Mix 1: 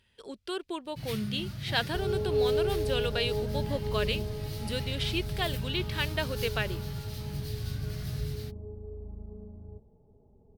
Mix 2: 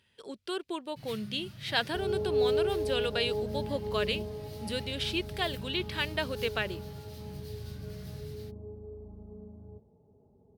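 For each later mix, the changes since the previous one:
first sound -7.5 dB; master: add HPF 94 Hz 12 dB/oct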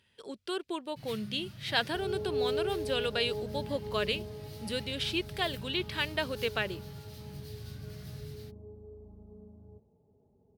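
second sound -4.5 dB

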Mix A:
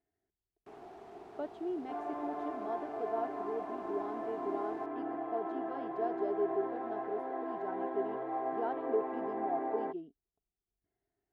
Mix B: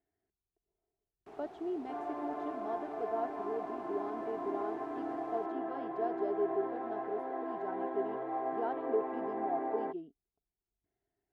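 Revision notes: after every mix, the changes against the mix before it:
first sound: entry +0.60 s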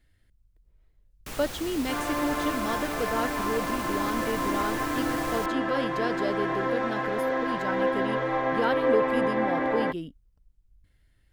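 master: remove double band-pass 530 Hz, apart 0.79 oct

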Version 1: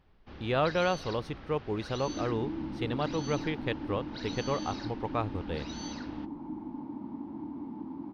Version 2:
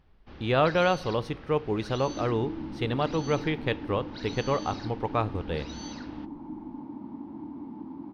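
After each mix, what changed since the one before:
reverb: on, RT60 0.80 s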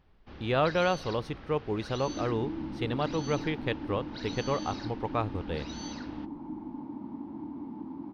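speech: send -11.5 dB

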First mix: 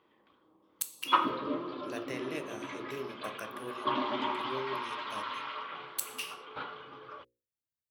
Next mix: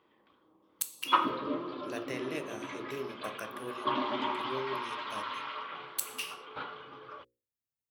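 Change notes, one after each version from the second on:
reverb: on, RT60 0.95 s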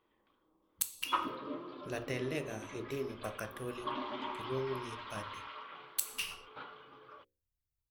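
speech: remove HPF 200 Hz 12 dB/oct; background -7.5 dB

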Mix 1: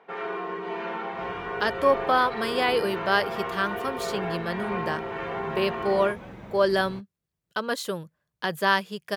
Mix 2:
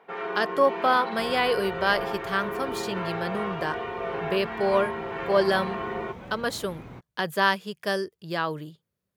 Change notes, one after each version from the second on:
speech: entry -1.25 s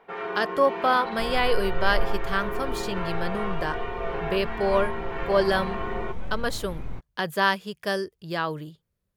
master: remove HPF 120 Hz 12 dB/oct

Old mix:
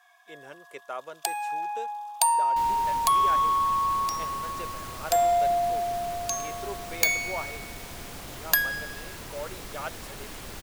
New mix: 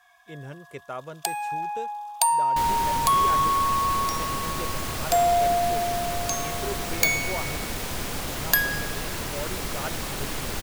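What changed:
speech: remove HPF 450 Hz 12 dB/oct; second sound +7.0 dB; reverb: on, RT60 0.40 s

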